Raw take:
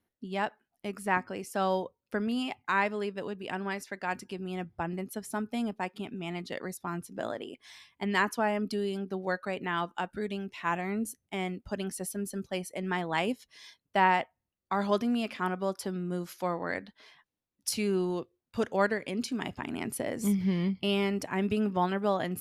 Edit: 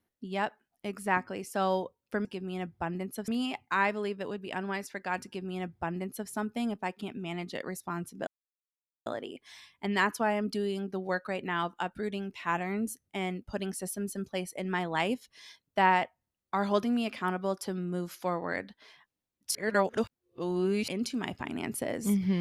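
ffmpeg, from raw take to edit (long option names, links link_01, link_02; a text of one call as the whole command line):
ffmpeg -i in.wav -filter_complex "[0:a]asplit=6[link_01][link_02][link_03][link_04][link_05][link_06];[link_01]atrim=end=2.252[link_07];[link_02]atrim=start=4.228:end=5.262[link_08];[link_03]atrim=start=2.248:end=7.24,asetpts=PTS-STARTPTS,afade=type=out:start_time=4.988:duration=0.004:curve=hsin,apad=pad_dur=0.79[link_09];[link_04]atrim=start=7.24:end=17.732,asetpts=PTS-STARTPTS,afade=type=in:duration=0.004:curve=hsin[link_10];[link_05]atrim=start=17.728:end=19.062,asetpts=PTS-STARTPTS,areverse[link_11];[link_06]atrim=start=19.058[link_12];[link_07][link_08]acrossfade=duration=0.004:curve1=hsin:curve2=hsin[link_13];[link_09][link_10]concat=n=2:v=0:a=1[link_14];[link_13][link_14]acrossfade=duration=0.004:curve1=hsin:curve2=hsin[link_15];[link_15][link_11]acrossfade=duration=0.004:curve1=hsin:curve2=hsin[link_16];[link_16][link_12]acrossfade=duration=0.004:curve1=hsin:curve2=hsin" out.wav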